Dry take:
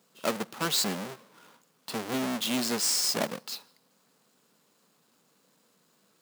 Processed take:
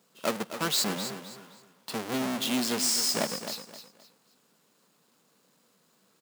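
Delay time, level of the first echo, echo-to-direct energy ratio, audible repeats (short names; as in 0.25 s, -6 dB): 0.261 s, -10.5 dB, -10.0 dB, 3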